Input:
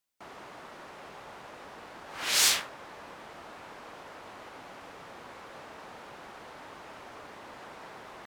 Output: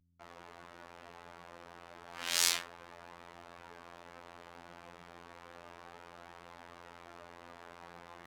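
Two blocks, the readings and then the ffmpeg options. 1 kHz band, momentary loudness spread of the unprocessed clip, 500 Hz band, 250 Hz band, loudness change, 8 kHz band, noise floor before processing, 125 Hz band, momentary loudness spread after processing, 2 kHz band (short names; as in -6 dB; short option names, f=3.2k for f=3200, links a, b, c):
-6.5 dB, 21 LU, -6.5 dB, -6.0 dB, -6.5 dB, -6.0 dB, -48 dBFS, -3.5 dB, 21 LU, -6.5 dB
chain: -af "areverse,acompressor=mode=upward:threshold=-49dB:ratio=2.5,areverse,flanger=delay=0.7:depth=5.3:regen=78:speed=0.31:shape=triangular,aeval=exprs='val(0)+0.000794*(sin(2*PI*60*n/s)+sin(2*PI*2*60*n/s)/2+sin(2*PI*3*60*n/s)/3+sin(2*PI*4*60*n/s)/4+sin(2*PI*5*60*n/s)/5)':c=same,afftfilt=real='hypot(re,im)*cos(PI*b)':imag='0':win_size=2048:overlap=0.75,anlmdn=0.0000251,volume=1.5dB"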